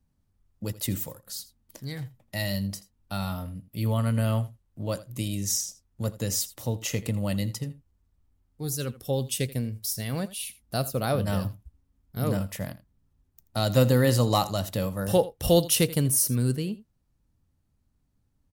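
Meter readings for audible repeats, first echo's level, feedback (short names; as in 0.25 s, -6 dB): 1, -17.5 dB, no steady repeat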